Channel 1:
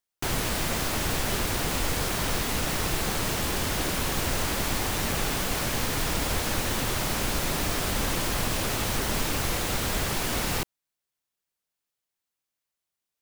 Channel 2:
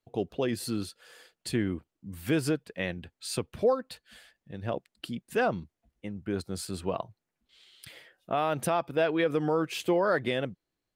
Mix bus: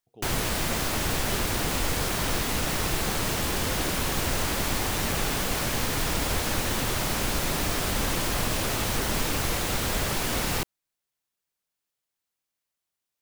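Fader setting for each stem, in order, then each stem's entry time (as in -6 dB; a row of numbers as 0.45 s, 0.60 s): +0.5 dB, -18.5 dB; 0.00 s, 0.00 s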